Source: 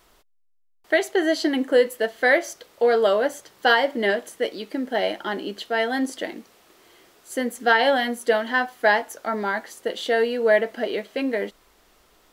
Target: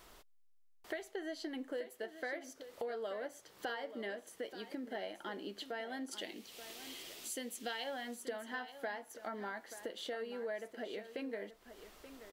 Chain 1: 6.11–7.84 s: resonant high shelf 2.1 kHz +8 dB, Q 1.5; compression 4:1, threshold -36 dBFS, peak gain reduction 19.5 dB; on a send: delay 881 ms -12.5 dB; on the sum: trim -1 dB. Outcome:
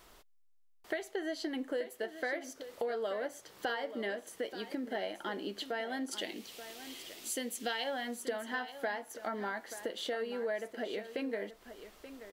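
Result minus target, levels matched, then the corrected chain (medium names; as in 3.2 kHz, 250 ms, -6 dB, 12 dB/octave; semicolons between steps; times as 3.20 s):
compression: peak gain reduction -5 dB
6.11–7.84 s: resonant high shelf 2.1 kHz +8 dB, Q 1.5; compression 4:1, threshold -43 dBFS, peak gain reduction 25 dB; on a send: delay 881 ms -12.5 dB; on the sum: trim -1 dB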